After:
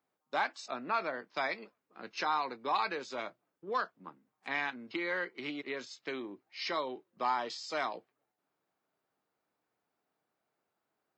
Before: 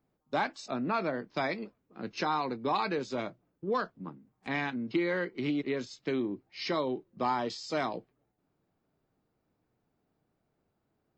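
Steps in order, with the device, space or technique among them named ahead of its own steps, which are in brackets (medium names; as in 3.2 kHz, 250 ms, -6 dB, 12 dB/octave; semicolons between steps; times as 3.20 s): filter by subtraction (in parallel: low-pass 1.2 kHz 12 dB/octave + polarity flip); on the sum: trim -1.5 dB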